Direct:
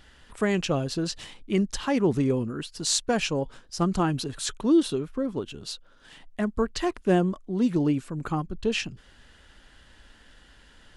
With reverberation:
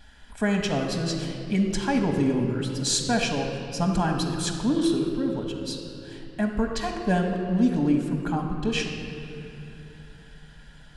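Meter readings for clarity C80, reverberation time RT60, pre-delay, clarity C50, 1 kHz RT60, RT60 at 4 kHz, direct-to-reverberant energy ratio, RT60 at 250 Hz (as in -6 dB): 5.5 dB, 2.9 s, 4 ms, 4.0 dB, 2.5 s, 2.0 s, 2.0 dB, 4.1 s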